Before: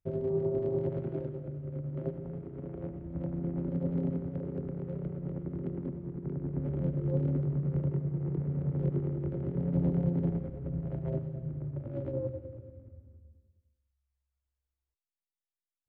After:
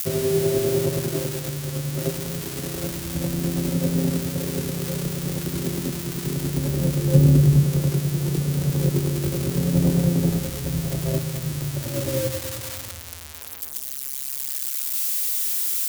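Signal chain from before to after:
spike at every zero crossing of −24 dBFS
0:07.14–0:07.64: low-shelf EQ 220 Hz +9.5 dB
level +9 dB

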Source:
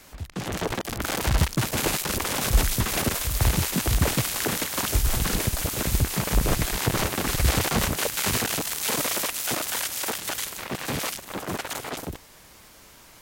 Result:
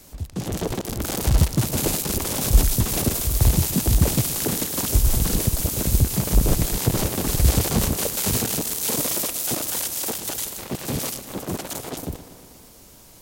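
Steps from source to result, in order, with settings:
parametric band 1,700 Hz −12 dB 2.5 octaves
tape delay 121 ms, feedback 77%, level −13 dB, low-pass 5,600 Hz
level +5 dB

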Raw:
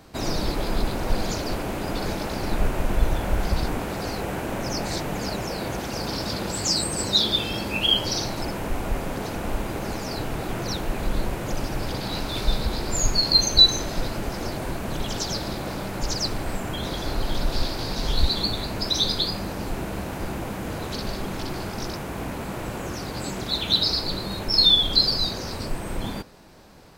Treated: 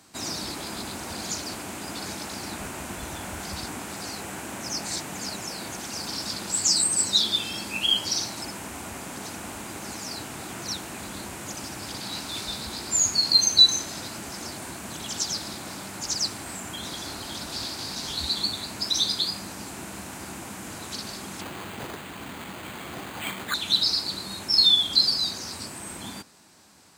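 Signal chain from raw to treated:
graphic EQ with 10 bands 125 Hz −9 dB, 500 Hz −9 dB, 8,000 Hz +11 dB
0:21.41–0:23.54: bad sample-rate conversion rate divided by 8×, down none, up hold
high-pass filter 86 Hz 24 dB per octave
level −3.5 dB

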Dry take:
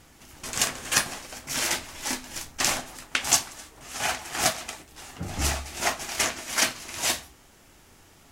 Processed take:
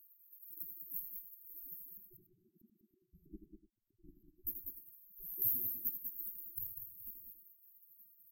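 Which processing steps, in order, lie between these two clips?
gate on every frequency bin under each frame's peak −30 dB weak
0:01.97–0:04.47: auto-filter low-pass saw up 3.1 Hz 310–4,900 Hz
linear-phase brick-wall band-stop 390–12,000 Hz
multi-tap delay 82/195/294 ms −8.5/−6/−17 dB
level +15.5 dB

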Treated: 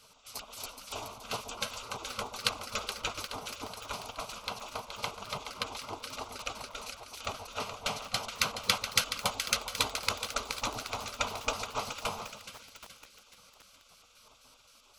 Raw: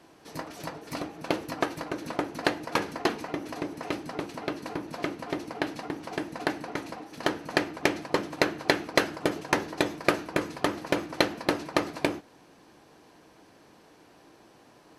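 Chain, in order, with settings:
pitch shifter gated in a rhythm −9 semitones, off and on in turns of 131 ms
phaser with its sweep stopped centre 350 Hz, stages 8
echo with a time of its own for lows and highs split 480 Hz, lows 133 ms, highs 423 ms, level −8.5 dB
gate on every frequency bin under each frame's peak −15 dB weak
feedback echo at a low word length 775 ms, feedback 55%, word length 7 bits, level −13 dB
level +7.5 dB

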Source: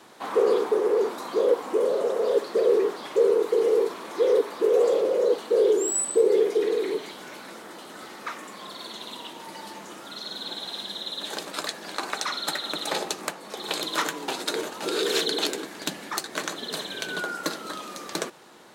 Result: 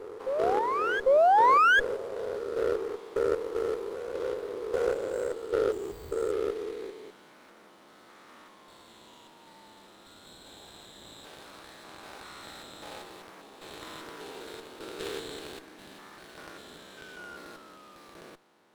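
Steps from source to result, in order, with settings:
spectrum averaged block by block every 200 ms
harmonic generator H 3 −13 dB, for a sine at −12.5 dBFS
sound drawn into the spectrogram rise, 0:01.06–0:01.80, 510–1,700 Hz −17 dBFS
on a send: backwards echo 797 ms −9.5 dB
on the sum: windowed peak hold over 5 samples
level −2.5 dB

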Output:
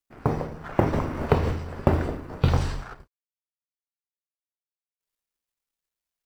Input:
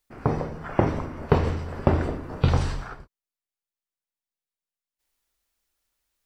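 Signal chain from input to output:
mu-law and A-law mismatch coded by A
0:00.93–0:01.52: multiband upward and downward compressor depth 70%

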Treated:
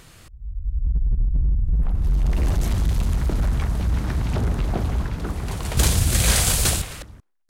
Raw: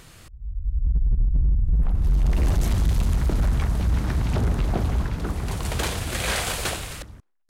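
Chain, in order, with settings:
0:05.77–0:06.82: bass and treble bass +11 dB, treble +11 dB

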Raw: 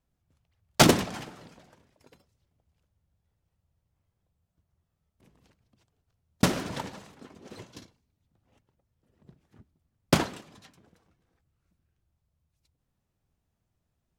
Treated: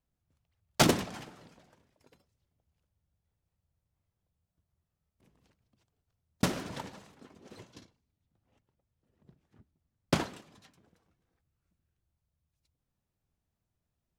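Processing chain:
0:07.73–0:10.18: high-shelf EQ 12,000 Hz −10.5 dB
level −5.5 dB

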